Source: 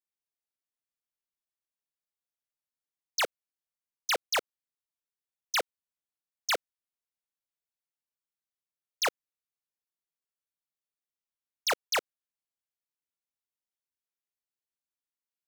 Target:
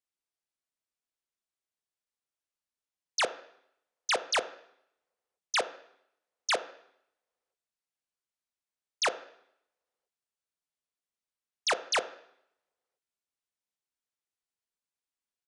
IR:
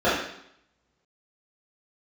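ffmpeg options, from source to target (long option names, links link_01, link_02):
-filter_complex "[0:a]asplit=2[link_01][link_02];[1:a]atrim=start_sample=2205[link_03];[link_02][link_03]afir=irnorm=-1:irlink=0,volume=-31dB[link_04];[link_01][link_04]amix=inputs=2:normalize=0,aresample=22050,aresample=44100"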